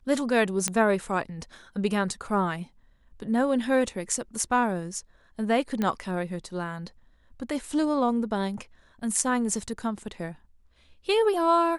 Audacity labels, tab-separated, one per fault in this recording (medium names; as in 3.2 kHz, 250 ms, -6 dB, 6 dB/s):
0.680000	0.680000	pop -10 dBFS
5.820000	5.820000	pop -15 dBFS